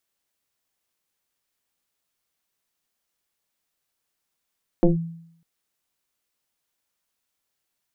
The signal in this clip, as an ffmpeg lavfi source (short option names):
-f lavfi -i "aevalsrc='0.316*pow(10,-3*t/0.69)*sin(2*PI*166*t+2.2*clip(1-t/0.14,0,1)*sin(2*PI*1.06*166*t))':d=0.6:s=44100"